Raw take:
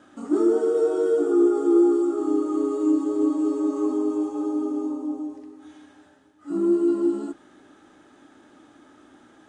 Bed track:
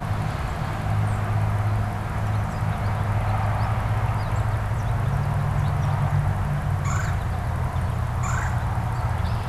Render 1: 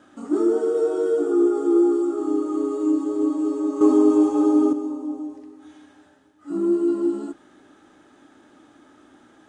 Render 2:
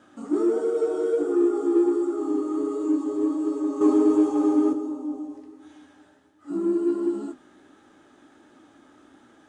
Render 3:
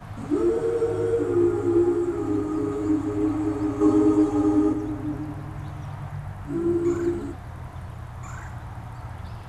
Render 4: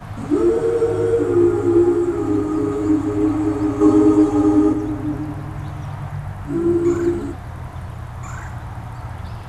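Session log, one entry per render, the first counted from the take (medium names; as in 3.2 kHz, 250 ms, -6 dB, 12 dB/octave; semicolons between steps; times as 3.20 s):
3.81–4.73 s: gain +8.5 dB
flange 1.4 Hz, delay 7.6 ms, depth 9.9 ms, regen -44%; in parallel at -11 dB: saturation -28 dBFS, distortion -6 dB
add bed track -12 dB
trim +6 dB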